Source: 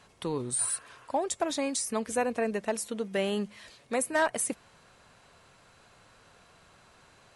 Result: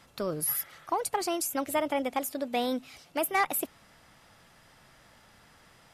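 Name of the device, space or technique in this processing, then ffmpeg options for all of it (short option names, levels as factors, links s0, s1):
nightcore: -af "asetrate=54684,aresample=44100,lowshelf=f=130:g=3.5"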